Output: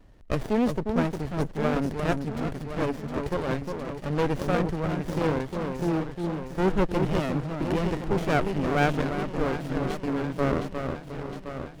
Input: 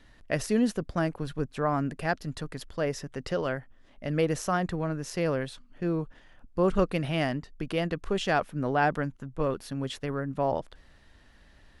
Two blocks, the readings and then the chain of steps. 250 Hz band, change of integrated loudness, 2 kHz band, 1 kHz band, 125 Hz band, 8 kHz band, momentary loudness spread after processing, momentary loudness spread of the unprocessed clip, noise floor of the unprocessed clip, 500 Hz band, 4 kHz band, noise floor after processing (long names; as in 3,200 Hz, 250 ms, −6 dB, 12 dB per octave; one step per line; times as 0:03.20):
+3.5 dB, +2.0 dB, +1.0 dB, +1.0 dB, +3.5 dB, −4.5 dB, 7 LU, 9 LU, −57 dBFS, +2.0 dB, −1.0 dB, −43 dBFS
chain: delay that swaps between a low-pass and a high-pass 356 ms, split 930 Hz, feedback 78%, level −5 dB
windowed peak hold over 33 samples
level +3.5 dB